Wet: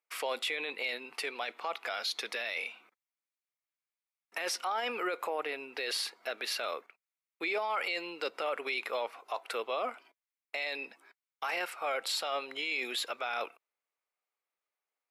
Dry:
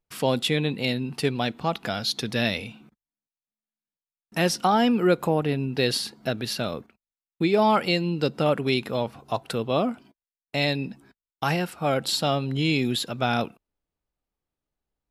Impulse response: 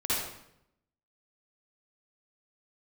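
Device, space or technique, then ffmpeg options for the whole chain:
laptop speaker: -af "highpass=f=450:w=0.5412,highpass=f=450:w=1.3066,equalizer=f=1200:t=o:w=0.6:g=6,equalizer=f=2200:t=o:w=0.54:g=10,alimiter=limit=0.1:level=0:latency=1:release=20,volume=0.596"

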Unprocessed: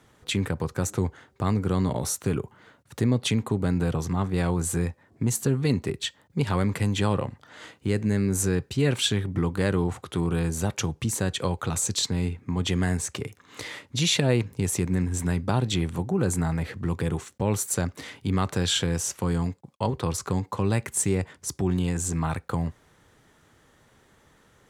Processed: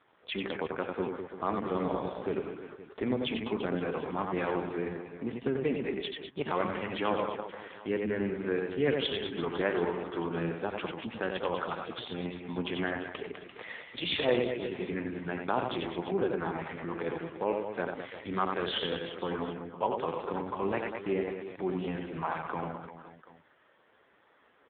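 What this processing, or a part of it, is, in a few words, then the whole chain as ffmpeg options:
telephone: -filter_complex "[0:a]asplit=3[s0][s1][s2];[s0]afade=t=out:st=17.19:d=0.02[s3];[s1]bass=f=250:g=-4,treble=f=4000:g=-14,afade=t=in:st=17.19:d=0.02,afade=t=out:st=17.73:d=0.02[s4];[s2]afade=t=in:st=17.73:d=0.02[s5];[s3][s4][s5]amix=inputs=3:normalize=0,highpass=360,lowpass=3600,aecho=1:1:90|202.5|343.1|518.9|738.6:0.631|0.398|0.251|0.158|0.1" -ar 8000 -c:a libopencore_amrnb -b:a 5150

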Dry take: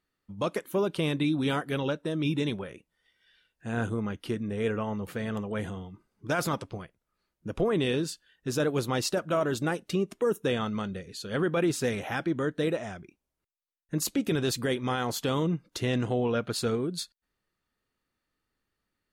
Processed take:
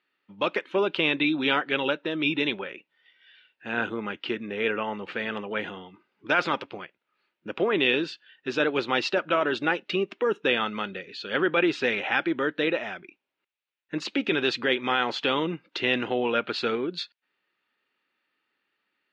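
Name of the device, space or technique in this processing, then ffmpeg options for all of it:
phone earpiece: -af "highpass=430,equalizer=f=470:t=q:w=4:g=-5,equalizer=f=670:t=q:w=4:g=-7,equalizer=f=1100:t=q:w=4:g=-5,equalizer=f=2600:t=q:w=4:g=5,lowpass=f=3700:w=0.5412,lowpass=f=3700:w=1.3066,volume=2.82"

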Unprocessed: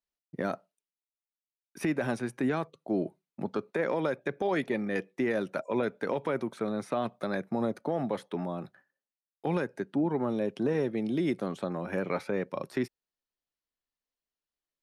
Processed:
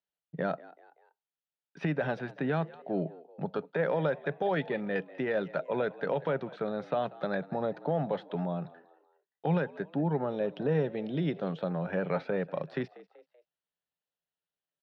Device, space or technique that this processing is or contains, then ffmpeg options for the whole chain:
frequency-shifting delay pedal into a guitar cabinet: -filter_complex "[0:a]asplit=4[s0][s1][s2][s3];[s1]adelay=191,afreqshift=76,volume=0.1[s4];[s2]adelay=382,afreqshift=152,volume=0.0422[s5];[s3]adelay=573,afreqshift=228,volume=0.0176[s6];[s0][s4][s5][s6]amix=inputs=4:normalize=0,highpass=100,equalizer=f=110:t=q:w=4:g=-6,equalizer=f=160:t=q:w=4:g=7,equalizer=f=230:t=q:w=4:g=-10,equalizer=f=340:t=q:w=4:g=-9,equalizer=f=1100:t=q:w=4:g=-7,equalizer=f=2200:t=q:w=4:g=-8,lowpass=f=3600:w=0.5412,lowpass=f=3600:w=1.3066,volume=1.33"

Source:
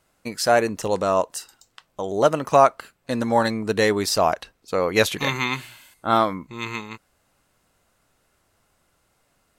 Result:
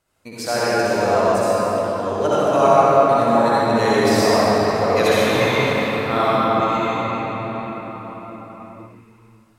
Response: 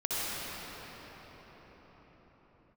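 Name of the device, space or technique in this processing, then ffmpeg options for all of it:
cathedral: -filter_complex "[1:a]atrim=start_sample=2205[s0];[0:a][s0]afir=irnorm=-1:irlink=0,volume=0.562"

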